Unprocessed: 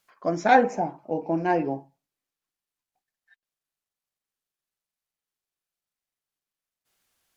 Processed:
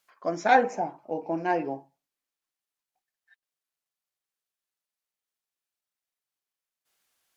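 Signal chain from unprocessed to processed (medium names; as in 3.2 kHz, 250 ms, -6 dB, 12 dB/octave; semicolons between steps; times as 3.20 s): bass shelf 250 Hz -10 dB; trim -1 dB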